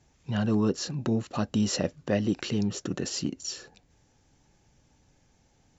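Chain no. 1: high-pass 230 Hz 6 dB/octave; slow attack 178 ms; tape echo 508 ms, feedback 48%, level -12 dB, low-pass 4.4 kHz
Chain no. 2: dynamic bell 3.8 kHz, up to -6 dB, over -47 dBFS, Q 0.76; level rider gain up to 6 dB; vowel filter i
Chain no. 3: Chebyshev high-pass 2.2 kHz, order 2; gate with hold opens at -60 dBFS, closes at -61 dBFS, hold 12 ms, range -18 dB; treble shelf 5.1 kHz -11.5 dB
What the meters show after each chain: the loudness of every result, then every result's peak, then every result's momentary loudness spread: -34.0 LUFS, -35.0 LUFS, -43.0 LUFS; -16.5 dBFS, -19.0 dBFS, -23.5 dBFS; 13 LU, 6 LU, 9 LU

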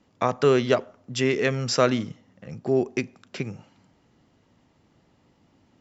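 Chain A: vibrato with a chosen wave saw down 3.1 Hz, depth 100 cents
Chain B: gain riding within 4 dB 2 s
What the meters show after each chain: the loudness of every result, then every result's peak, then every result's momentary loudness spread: -25.0 LUFS, -25.0 LUFS; -5.0 dBFS, -6.0 dBFS; 14 LU, 15 LU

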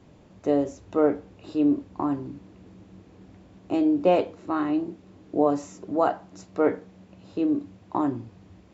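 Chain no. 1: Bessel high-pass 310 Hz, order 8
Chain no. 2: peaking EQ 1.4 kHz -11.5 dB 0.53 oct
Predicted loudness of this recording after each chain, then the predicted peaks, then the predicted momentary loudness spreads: -28.0 LUFS, -26.5 LUFS; -10.0 dBFS, -9.0 dBFS; 14 LU, 14 LU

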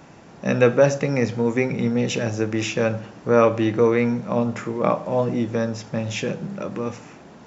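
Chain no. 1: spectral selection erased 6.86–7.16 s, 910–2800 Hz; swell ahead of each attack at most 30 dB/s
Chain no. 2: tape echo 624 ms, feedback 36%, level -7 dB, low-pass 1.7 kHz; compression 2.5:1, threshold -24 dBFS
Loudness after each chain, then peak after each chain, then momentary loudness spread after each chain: -20.0 LUFS, -27.0 LUFS; -1.5 dBFS, -9.5 dBFS; 10 LU, 5 LU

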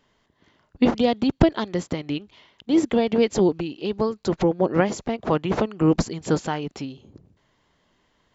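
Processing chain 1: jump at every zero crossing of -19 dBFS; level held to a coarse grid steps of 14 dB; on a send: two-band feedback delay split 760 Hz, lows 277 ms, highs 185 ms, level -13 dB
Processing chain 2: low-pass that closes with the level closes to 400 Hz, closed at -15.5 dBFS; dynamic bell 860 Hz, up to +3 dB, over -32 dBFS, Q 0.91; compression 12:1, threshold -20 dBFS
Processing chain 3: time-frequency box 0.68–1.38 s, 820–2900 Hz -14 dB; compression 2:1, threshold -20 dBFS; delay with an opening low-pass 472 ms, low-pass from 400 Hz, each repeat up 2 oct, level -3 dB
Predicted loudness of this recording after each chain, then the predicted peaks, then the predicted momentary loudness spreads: -24.5 LUFS, -28.0 LUFS, -24.5 LUFS; -5.0 dBFS, -7.0 dBFS, -6.0 dBFS; 7 LU, 6 LU, 6 LU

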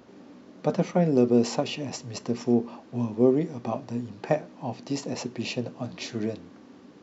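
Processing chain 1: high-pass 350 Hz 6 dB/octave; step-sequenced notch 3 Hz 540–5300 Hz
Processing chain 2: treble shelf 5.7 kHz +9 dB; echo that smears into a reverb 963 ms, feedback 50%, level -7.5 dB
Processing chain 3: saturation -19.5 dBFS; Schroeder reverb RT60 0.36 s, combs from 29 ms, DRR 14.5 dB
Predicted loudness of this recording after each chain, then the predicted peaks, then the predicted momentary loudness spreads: -31.5 LUFS, -27.0 LUFS, -30.5 LUFS; -11.5 dBFS, -8.0 dBFS, -17.5 dBFS; 13 LU, 11 LU, 13 LU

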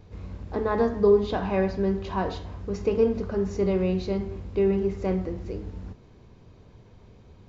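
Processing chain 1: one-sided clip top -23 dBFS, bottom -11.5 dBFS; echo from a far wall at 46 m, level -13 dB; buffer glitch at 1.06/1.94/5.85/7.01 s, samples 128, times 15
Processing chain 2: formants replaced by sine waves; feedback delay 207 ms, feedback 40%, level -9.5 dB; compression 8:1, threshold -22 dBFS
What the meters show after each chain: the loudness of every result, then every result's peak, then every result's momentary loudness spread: -27.5 LUFS, -30.5 LUFS; -12.0 dBFS, -15.5 dBFS; 12 LU, 14 LU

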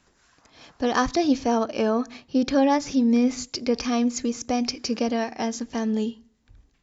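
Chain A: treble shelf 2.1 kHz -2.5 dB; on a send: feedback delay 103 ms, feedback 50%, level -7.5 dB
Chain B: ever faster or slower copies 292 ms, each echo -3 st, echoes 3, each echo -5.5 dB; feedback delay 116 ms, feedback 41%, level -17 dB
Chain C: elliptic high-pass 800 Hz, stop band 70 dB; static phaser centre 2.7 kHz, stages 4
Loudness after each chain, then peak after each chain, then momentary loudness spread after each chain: -23.5 LUFS, -23.0 LUFS, -39.0 LUFS; -8.0 dBFS, -8.0 dBFS, -19.5 dBFS; 8 LU, 7 LU, 12 LU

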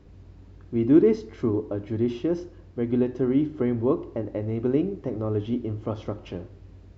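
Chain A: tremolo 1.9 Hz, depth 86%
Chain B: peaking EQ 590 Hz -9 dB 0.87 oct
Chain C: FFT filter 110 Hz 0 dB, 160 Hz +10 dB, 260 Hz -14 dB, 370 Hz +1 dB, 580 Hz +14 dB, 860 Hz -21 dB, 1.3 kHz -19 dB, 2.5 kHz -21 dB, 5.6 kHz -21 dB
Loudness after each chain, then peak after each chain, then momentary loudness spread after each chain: -28.5 LUFS, -27.5 LUFS, -24.0 LUFS; -8.0 dBFS, -8.5 dBFS, -6.0 dBFS; 16 LU, 14 LU, 12 LU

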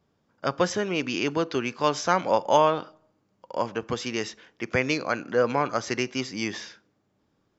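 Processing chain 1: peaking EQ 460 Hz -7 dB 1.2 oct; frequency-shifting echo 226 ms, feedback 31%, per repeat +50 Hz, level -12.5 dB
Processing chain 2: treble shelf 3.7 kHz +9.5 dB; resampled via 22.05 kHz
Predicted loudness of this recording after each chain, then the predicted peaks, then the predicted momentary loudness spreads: -29.0 LUFS, -25.0 LUFS; -8.0 dBFS, -4.5 dBFS; 13 LU, 10 LU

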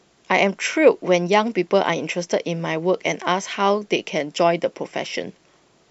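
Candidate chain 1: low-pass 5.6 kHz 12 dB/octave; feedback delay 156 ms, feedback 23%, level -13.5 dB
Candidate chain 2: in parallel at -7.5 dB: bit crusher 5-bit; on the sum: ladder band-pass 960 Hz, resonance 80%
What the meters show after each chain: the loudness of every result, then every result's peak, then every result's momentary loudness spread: -21.0 LUFS, -26.5 LUFS; -2.0 dBFS, -7.5 dBFS; 10 LU, 15 LU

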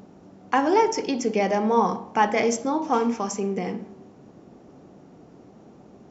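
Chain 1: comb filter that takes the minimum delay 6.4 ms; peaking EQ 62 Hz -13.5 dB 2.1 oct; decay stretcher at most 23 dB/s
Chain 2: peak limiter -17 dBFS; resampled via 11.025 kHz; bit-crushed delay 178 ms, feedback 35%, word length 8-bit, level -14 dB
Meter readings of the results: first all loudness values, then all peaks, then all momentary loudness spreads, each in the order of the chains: -24.5 LUFS, -27.0 LUFS; -9.0 dBFS, -15.5 dBFS; 14 LU, 7 LU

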